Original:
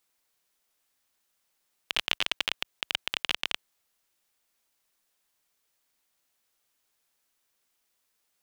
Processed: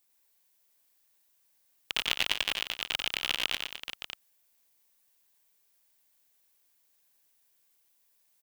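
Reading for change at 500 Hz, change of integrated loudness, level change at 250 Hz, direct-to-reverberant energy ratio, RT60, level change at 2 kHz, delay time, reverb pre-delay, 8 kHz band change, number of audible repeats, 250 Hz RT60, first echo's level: 0.0 dB, -0.5 dB, 0.0 dB, none, none, 0.0 dB, 92 ms, none, +2.5 dB, 3, none, -5.0 dB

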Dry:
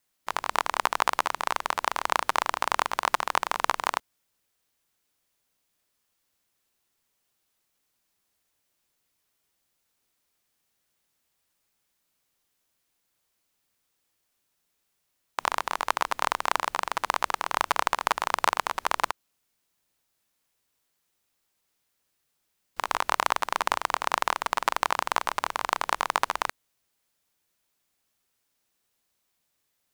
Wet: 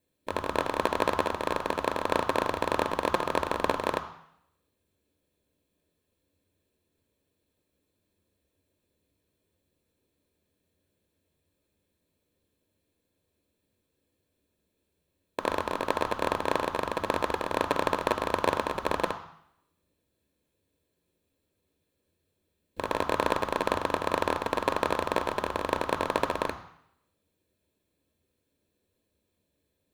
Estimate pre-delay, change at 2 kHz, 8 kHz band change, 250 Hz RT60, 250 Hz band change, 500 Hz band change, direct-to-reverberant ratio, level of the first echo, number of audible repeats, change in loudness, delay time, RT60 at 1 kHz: 3 ms, -4.0 dB, -8.5 dB, 0.75 s, +11.5 dB, +8.0 dB, 10.5 dB, none, none, -2.0 dB, none, 0.70 s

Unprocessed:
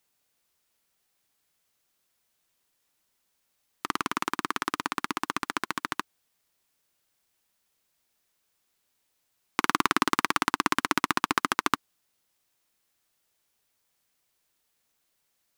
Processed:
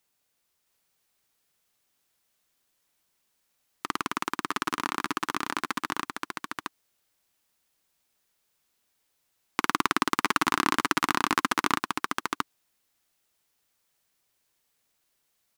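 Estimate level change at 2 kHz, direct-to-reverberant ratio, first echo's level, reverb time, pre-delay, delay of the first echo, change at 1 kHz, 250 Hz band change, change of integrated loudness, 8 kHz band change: +0.5 dB, none, -3.5 dB, none, none, 0.666 s, +0.5 dB, +1.0 dB, -0.5 dB, +0.5 dB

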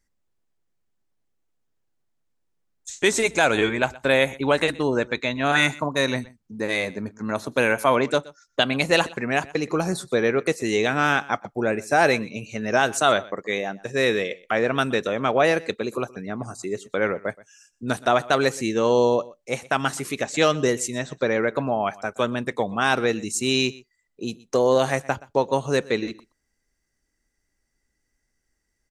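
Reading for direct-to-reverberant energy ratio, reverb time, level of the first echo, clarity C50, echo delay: none, none, -21.5 dB, none, 0.123 s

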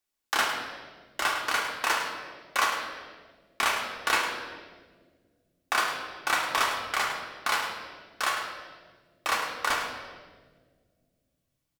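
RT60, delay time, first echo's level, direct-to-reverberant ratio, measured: 1.6 s, 0.104 s, -9.0 dB, -0.5 dB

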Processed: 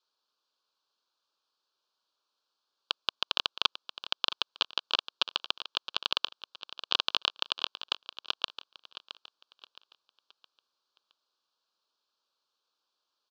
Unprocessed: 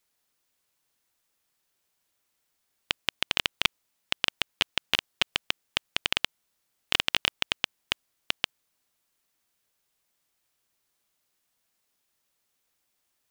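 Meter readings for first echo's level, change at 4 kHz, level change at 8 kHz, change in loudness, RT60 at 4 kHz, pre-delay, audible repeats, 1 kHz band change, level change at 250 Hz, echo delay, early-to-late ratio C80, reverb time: -13.0 dB, -1.5 dB, -10.0 dB, -2.5 dB, none, none, 3, +0.5 dB, -9.5 dB, 0.667 s, none, none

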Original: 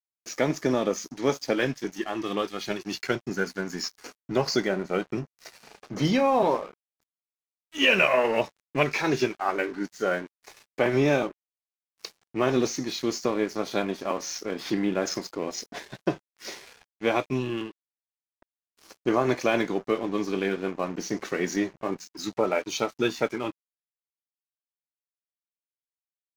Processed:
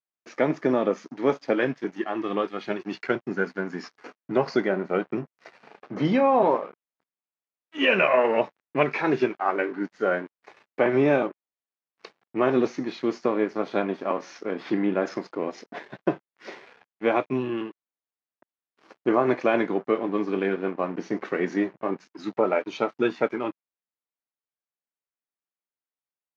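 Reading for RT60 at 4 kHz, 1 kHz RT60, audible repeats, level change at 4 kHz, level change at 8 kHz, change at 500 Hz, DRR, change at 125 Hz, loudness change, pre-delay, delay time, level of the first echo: none, none, none, -6.5 dB, under -15 dB, +2.5 dB, none, -2.0 dB, +1.5 dB, none, none, none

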